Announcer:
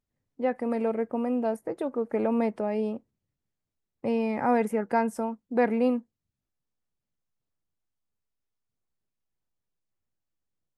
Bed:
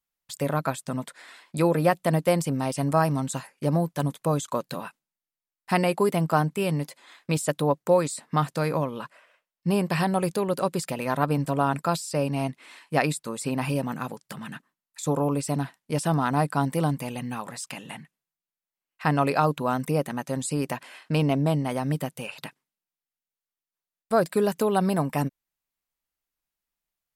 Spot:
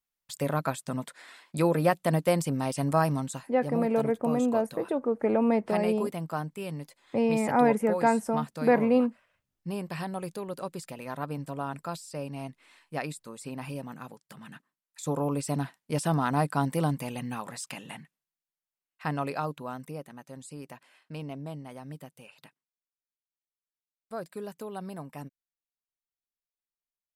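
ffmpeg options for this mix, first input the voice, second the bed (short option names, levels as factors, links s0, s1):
-filter_complex "[0:a]adelay=3100,volume=1.19[s0];[1:a]volume=1.88,afade=t=out:st=3.12:d=0.37:silence=0.398107,afade=t=in:st=14.29:d=1.35:silence=0.398107,afade=t=out:st=17.71:d=2.33:silence=0.223872[s1];[s0][s1]amix=inputs=2:normalize=0"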